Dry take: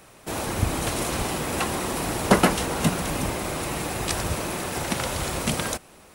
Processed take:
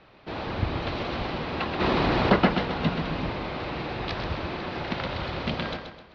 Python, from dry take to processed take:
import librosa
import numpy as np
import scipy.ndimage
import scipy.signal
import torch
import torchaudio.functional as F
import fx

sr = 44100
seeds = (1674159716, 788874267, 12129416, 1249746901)

p1 = scipy.signal.sosfilt(scipy.signal.butter(8, 4500.0, 'lowpass', fs=sr, output='sos'), x)
p2 = p1 + fx.echo_feedback(p1, sr, ms=129, feedback_pct=38, wet_db=-7, dry=0)
p3 = fx.env_flatten(p2, sr, amount_pct=50, at=(1.79, 2.35), fade=0.02)
y = F.gain(torch.from_numpy(p3), -3.5).numpy()